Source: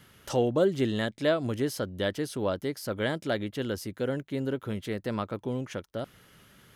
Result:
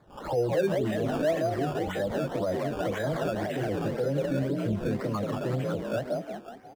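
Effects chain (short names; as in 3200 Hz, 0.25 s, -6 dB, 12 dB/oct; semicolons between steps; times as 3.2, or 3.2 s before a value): spectral delay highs early, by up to 0.296 s; on a send: frequency-shifting echo 0.18 s, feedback 59%, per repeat +42 Hz, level -3.5 dB; on the sum: dynamic EQ 280 Hz, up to -3 dB, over -38 dBFS, Q 0.96; in parallel at -2.5 dB: compressor, threshold -35 dBFS, peak gain reduction 15 dB; on the sum: resonant high shelf 5300 Hz -14 dB, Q 1.5; decimation with a swept rate 15×, swing 100% 1.9 Hz; limiter -24 dBFS, peak gain reduction 11.5 dB; spectral expander 1.5:1; gain +6.5 dB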